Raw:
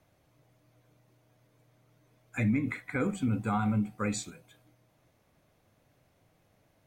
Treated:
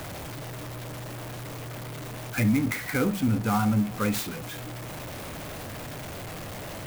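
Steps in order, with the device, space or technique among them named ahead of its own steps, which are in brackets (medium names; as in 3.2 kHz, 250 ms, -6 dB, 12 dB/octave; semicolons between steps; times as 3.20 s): early CD player with a faulty converter (jump at every zero crossing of -35 dBFS; sampling jitter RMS 0.037 ms); trim +3.5 dB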